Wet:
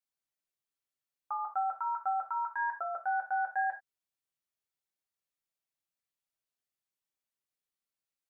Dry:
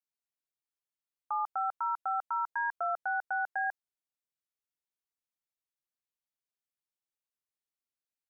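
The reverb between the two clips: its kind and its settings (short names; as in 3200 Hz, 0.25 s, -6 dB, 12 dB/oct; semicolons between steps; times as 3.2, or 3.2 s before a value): non-linear reverb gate 0.11 s falling, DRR 0 dB; gain -2.5 dB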